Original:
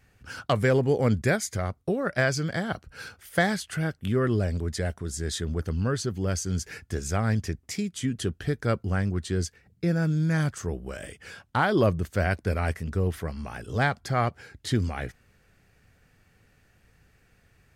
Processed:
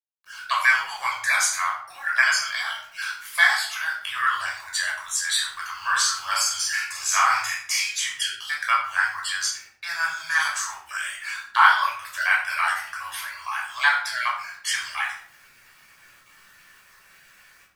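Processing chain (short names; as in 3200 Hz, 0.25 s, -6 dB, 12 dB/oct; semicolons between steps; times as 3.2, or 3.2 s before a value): random spectral dropouts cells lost 24%; elliptic high-pass 950 Hz, stop band 50 dB; AGC gain up to 15 dB; bit-crush 9-bit; 5.76–7.93 doubler 45 ms -2.5 dB; shoebox room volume 900 m³, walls furnished, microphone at 5.6 m; gain -6.5 dB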